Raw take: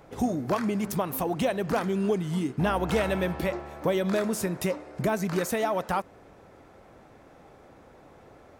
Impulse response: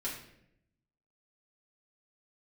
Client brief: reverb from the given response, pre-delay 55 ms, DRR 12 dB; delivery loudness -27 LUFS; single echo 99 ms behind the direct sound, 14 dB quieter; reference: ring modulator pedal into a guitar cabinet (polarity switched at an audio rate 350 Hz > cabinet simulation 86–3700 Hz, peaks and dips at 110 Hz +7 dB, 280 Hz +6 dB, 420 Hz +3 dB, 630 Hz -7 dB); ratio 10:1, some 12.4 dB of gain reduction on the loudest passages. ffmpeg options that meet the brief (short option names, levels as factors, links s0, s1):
-filter_complex "[0:a]acompressor=threshold=0.02:ratio=10,aecho=1:1:99:0.2,asplit=2[s0][s1];[1:a]atrim=start_sample=2205,adelay=55[s2];[s1][s2]afir=irnorm=-1:irlink=0,volume=0.188[s3];[s0][s3]amix=inputs=2:normalize=0,aeval=exprs='val(0)*sgn(sin(2*PI*350*n/s))':c=same,highpass=86,equalizer=f=110:t=q:w=4:g=7,equalizer=f=280:t=q:w=4:g=6,equalizer=f=420:t=q:w=4:g=3,equalizer=f=630:t=q:w=4:g=-7,lowpass=f=3700:w=0.5412,lowpass=f=3700:w=1.3066,volume=3.55"